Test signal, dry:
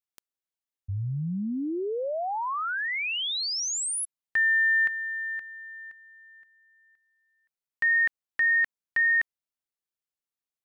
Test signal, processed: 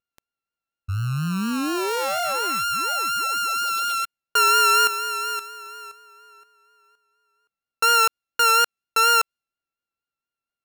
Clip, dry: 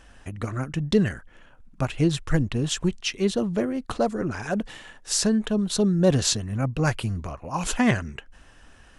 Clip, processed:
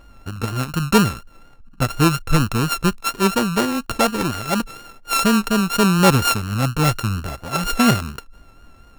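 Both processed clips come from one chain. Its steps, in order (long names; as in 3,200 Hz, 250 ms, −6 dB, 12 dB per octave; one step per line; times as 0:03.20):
samples sorted by size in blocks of 32 samples
pitch vibrato 4.2 Hz 40 cents
one half of a high-frequency compander decoder only
level +5.5 dB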